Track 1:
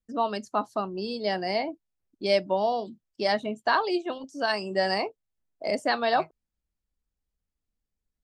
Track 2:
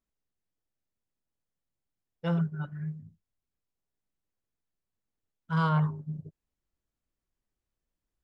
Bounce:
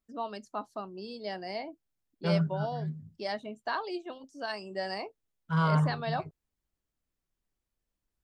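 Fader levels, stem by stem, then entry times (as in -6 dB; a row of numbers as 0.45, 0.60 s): -9.5, 0.0 dB; 0.00, 0.00 s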